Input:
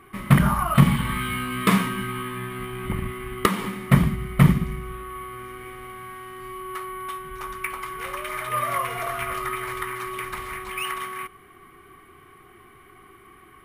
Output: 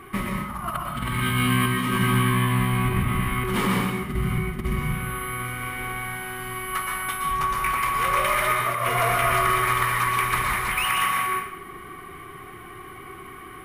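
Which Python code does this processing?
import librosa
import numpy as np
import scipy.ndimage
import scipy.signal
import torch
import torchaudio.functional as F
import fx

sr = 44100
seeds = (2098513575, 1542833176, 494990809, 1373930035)

p1 = 10.0 ** (-17.5 / 20.0) * np.tanh(x / 10.0 ** (-17.5 / 20.0))
p2 = x + (p1 * librosa.db_to_amplitude(-7.5))
p3 = fx.over_compress(p2, sr, threshold_db=-26.0, ratio=-0.5)
y = fx.rev_plate(p3, sr, seeds[0], rt60_s=0.72, hf_ratio=0.85, predelay_ms=105, drr_db=0.0)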